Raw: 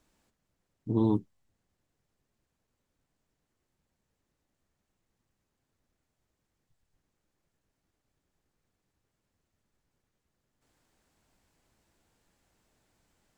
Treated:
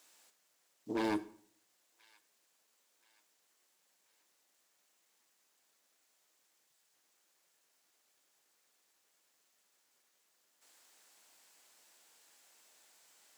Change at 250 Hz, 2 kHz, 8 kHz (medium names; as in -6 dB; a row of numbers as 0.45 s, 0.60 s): -8.5 dB, +24.5 dB, no reading